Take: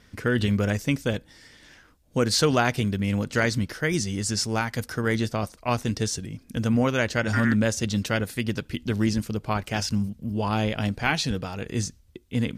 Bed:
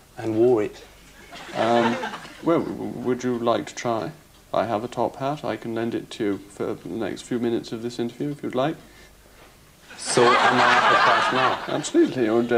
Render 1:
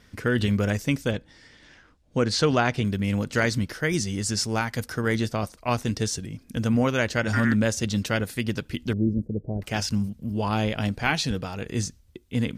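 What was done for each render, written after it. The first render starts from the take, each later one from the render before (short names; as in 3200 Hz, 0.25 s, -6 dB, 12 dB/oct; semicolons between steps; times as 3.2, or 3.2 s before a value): 1.11–2.85 air absorption 68 m; 8.93–9.62 inverse Chebyshev low-pass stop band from 1100 Hz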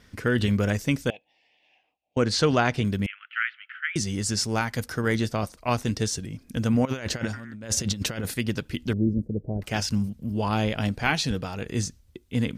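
1.1–2.17 double band-pass 1400 Hz, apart 1.8 oct; 3.06–3.96 Chebyshev band-pass 1300–3100 Hz, order 4; 6.85–8.34 negative-ratio compressor -29 dBFS, ratio -0.5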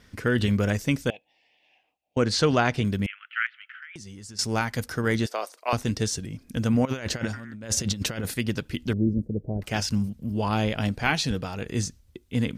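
3.46–4.39 compressor 16:1, threshold -38 dBFS; 5.26–5.73 HPF 420 Hz 24 dB/oct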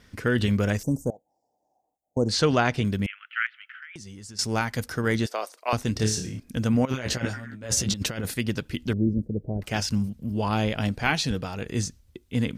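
0.83–2.29 Chebyshev band-stop 850–6800 Hz, order 3; 5.93–6.4 flutter echo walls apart 4.8 m, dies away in 0.36 s; 6.92–7.94 doubler 16 ms -3 dB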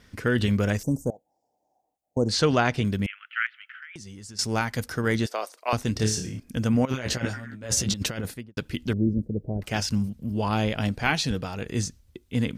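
6.11–6.77 notch 3900 Hz; 8.15–8.57 studio fade out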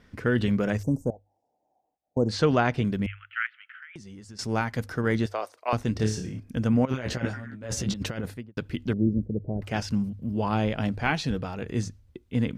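high shelf 3500 Hz -12 dB; notches 50/100 Hz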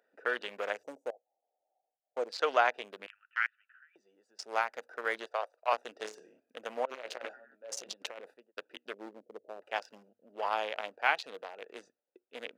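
Wiener smoothing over 41 samples; HPF 570 Hz 24 dB/oct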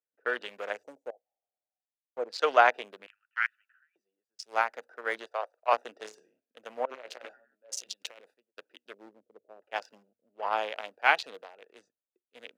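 three-band expander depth 70%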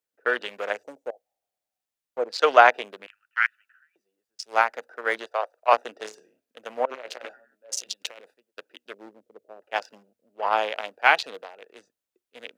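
gain +6.5 dB; limiter -1 dBFS, peak gain reduction 3 dB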